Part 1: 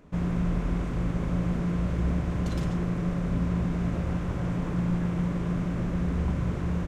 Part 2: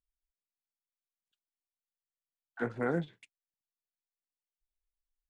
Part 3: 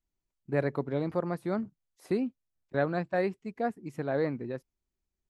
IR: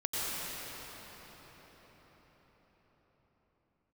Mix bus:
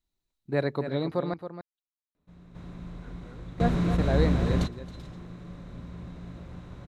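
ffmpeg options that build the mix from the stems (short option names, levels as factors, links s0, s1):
-filter_complex "[0:a]adelay=2150,volume=1.41,asplit=2[s0][s1];[s1]volume=0.141[s2];[1:a]alimiter=level_in=1.5:limit=0.0631:level=0:latency=1,volume=0.668,adelay=450,volume=0.141[s3];[2:a]volume=1.19,asplit=3[s4][s5][s6];[s4]atrim=end=1.34,asetpts=PTS-STARTPTS,afade=t=out:st=1.336:d=0.004:c=hsin[s7];[s5]atrim=start=1.34:end=3.58,asetpts=PTS-STARTPTS,volume=0[s8];[s6]atrim=start=3.58,asetpts=PTS-STARTPTS,afade=t=in:d=0.004:c=hsin[s9];[s7][s8][s9]concat=n=3:v=0:a=1,asplit=3[s10][s11][s12];[s11]volume=0.316[s13];[s12]apad=whole_len=397782[s14];[s0][s14]sidechaingate=range=0.0447:threshold=0.00631:ratio=16:detection=peak[s15];[s2][s13]amix=inputs=2:normalize=0,aecho=0:1:272:1[s16];[s15][s3][s10][s16]amix=inputs=4:normalize=0,equalizer=f=3900:w=6.5:g=13.5"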